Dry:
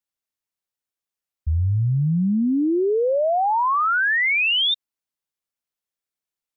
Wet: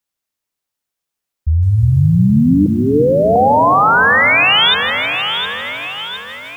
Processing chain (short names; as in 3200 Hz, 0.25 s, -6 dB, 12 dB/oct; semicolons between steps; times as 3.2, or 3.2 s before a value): 2.66–3.36 elliptic high-pass 450 Hz, stop band 80 dB; echo with dull and thin repeats by turns 0.356 s, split 1200 Hz, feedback 69%, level -5 dB; lo-fi delay 0.158 s, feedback 80%, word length 8-bit, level -12 dB; gain +7.5 dB